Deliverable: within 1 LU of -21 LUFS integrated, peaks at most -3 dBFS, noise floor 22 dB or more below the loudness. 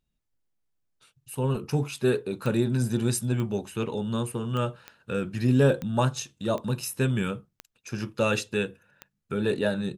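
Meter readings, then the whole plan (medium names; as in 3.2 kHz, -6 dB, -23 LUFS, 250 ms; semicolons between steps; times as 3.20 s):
clicks found 8; loudness -27.5 LUFS; peak level -10.0 dBFS; loudness target -21.0 LUFS
-> de-click; trim +6.5 dB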